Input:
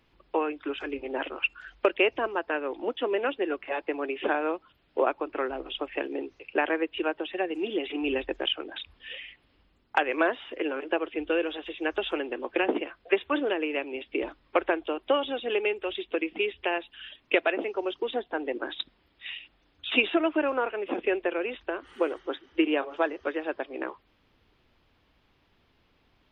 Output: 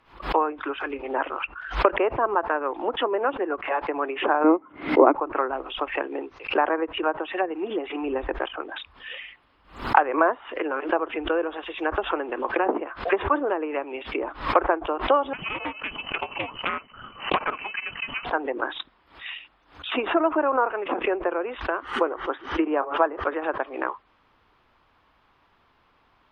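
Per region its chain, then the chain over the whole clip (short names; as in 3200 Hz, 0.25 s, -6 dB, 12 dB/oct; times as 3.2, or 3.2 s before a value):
4.44–5.15 HPF 120 Hz 6 dB/oct + small resonant body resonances 290/2100 Hz, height 18 dB, ringing for 30 ms + decimation joined by straight lines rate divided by 3×
15.33–18.25 half-wave gain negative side -7 dB + inverted band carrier 3000 Hz + Doppler distortion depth 0.37 ms
whole clip: treble ducked by the level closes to 1200 Hz, closed at -25 dBFS; bell 1100 Hz +13.5 dB 1.5 oct; backwards sustainer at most 140 dB/s; gain -1.5 dB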